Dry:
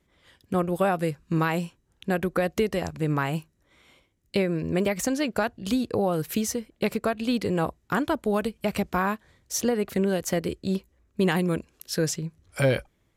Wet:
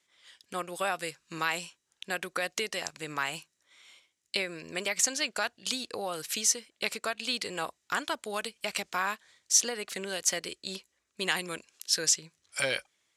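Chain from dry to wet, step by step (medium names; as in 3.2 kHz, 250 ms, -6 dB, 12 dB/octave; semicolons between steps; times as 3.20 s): frequency weighting ITU-R 468; trim -5 dB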